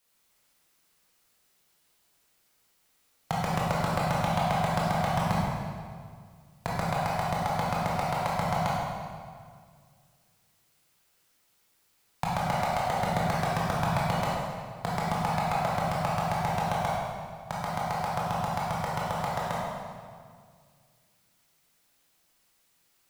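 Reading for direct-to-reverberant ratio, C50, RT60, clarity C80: −6.5 dB, −2.5 dB, 2.0 s, 0.0 dB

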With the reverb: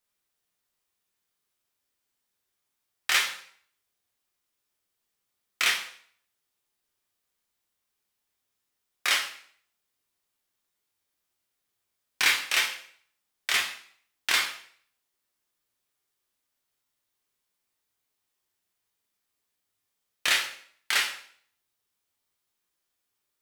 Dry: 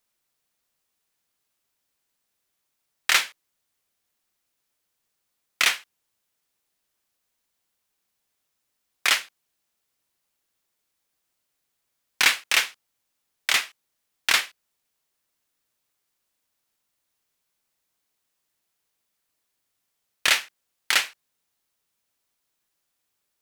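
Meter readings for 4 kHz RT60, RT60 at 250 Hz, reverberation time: 0.50 s, 0.55 s, 0.55 s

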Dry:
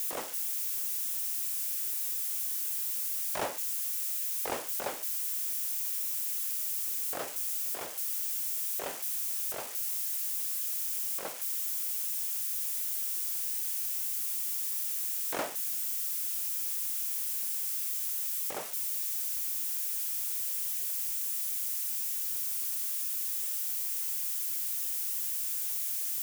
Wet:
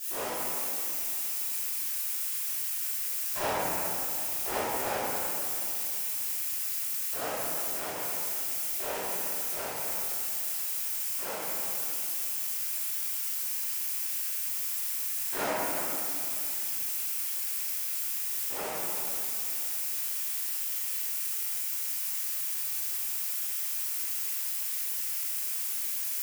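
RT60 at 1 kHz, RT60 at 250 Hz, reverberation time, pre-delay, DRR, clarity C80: 2.7 s, 3.6 s, 2.7 s, 3 ms, −18.0 dB, −3.5 dB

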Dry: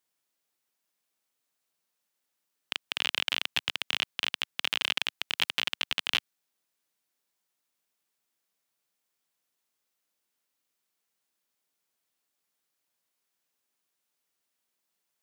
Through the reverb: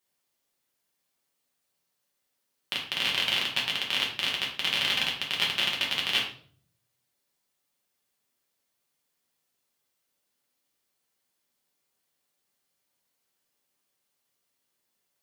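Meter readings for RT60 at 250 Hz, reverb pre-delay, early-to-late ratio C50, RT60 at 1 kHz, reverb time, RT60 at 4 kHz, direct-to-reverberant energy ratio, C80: 0.75 s, 5 ms, 6.0 dB, 0.45 s, 0.50 s, 0.40 s, −3.0 dB, 10.0 dB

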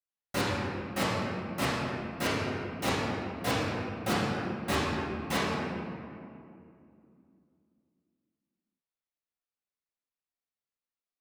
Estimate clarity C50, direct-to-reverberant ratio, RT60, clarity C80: −3.0 dB, −11.5 dB, 2.5 s, −0.5 dB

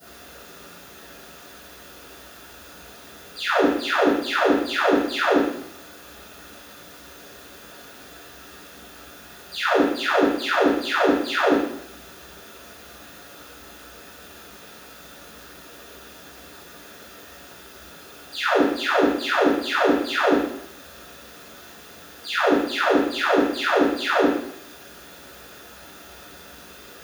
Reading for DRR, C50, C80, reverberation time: −18.0 dB, 0.5 dB, 4.0 dB, 0.70 s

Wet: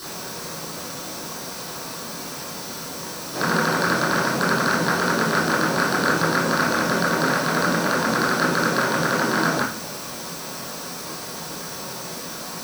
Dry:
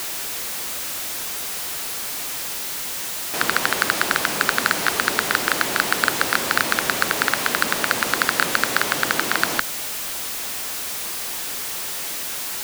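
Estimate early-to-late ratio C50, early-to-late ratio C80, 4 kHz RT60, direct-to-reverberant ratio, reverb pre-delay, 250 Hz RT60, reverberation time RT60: 4.0 dB, 10.0 dB, 0.40 s, −11.0 dB, 15 ms, 0.70 s, 0.45 s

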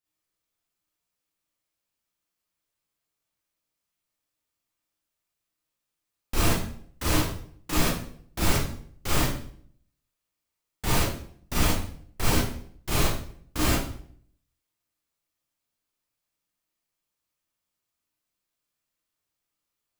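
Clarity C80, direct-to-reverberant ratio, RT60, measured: 6.0 dB, −8.0 dB, 0.55 s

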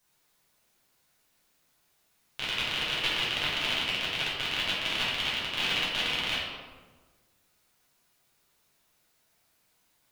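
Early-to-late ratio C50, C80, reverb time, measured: −0.5 dB, 2.5 dB, 1.4 s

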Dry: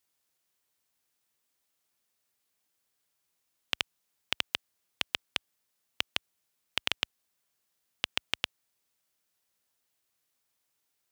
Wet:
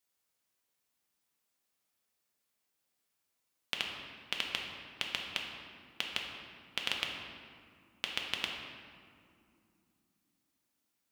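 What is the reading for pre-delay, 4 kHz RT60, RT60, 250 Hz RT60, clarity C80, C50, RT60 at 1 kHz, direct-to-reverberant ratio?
4 ms, 1.3 s, 2.5 s, 4.2 s, 4.0 dB, 2.5 dB, 2.3 s, −0.5 dB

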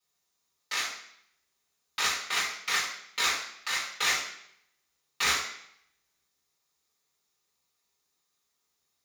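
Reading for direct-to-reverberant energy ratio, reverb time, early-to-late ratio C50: −7.0 dB, 0.70 s, 5.0 dB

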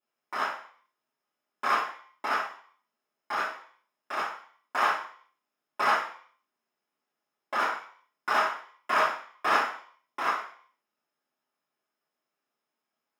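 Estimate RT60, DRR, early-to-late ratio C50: 0.50 s, −10.0 dB, 6.5 dB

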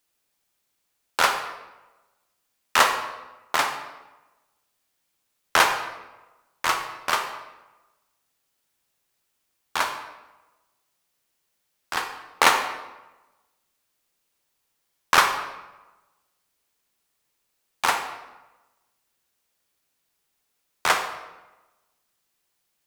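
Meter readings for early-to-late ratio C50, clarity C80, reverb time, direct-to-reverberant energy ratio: 7.0 dB, 9.0 dB, 1.1 s, 5.5 dB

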